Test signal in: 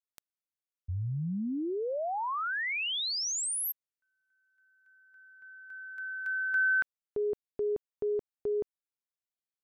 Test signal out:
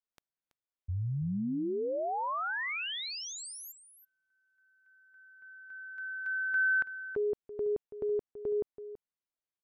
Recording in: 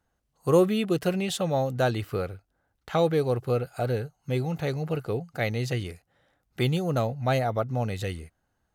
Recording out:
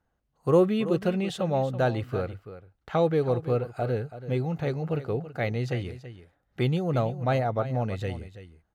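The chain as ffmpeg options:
-af "lowpass=f=2.2k:p=1,aecho=1:1:330:0.211"

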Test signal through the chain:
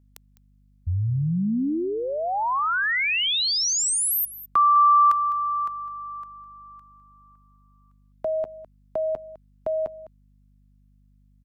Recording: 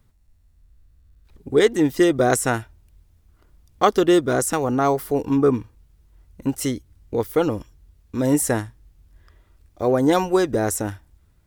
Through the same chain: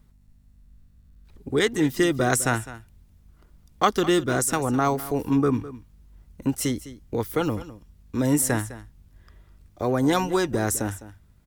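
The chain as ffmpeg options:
-filter_complex "[0:a]acrossover=split=310|800|6000[a][b][c][d];[b]acompressor=threshold=-31dB:ratio=6[e];[a][e][c][d]amix=inputs=4:normalize=0,aeval=exprs='val(0)+0.00141*(sin(2*PI*50*n/s)+sin(2*PI*2*50*n/s)/2+sin(2*PI*3*50*n/s)/3+sin(2*PI*4*50*n/s)/4+sin(2*PI*5*50*n/s)/5)':c=same,aecho=1:1:206:0.158"

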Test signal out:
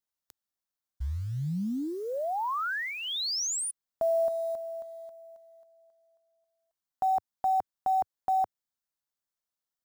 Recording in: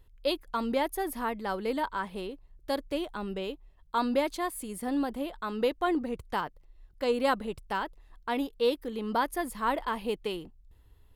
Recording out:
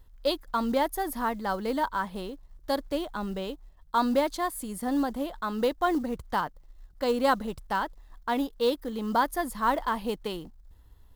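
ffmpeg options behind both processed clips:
-af "acrusher=bits=7:mode=log:mix=0:aa=0.000001,equalizer=f=100:t=o:w=0.67:g=-4,equalizer=f=400:t=o:w=0.67:g=-6,equalizer=f=2.5k:t=o:w=0.67:g=-8,equalizer=f=10k:t=o:w=0.67:g=-3,volume=4.5dB"

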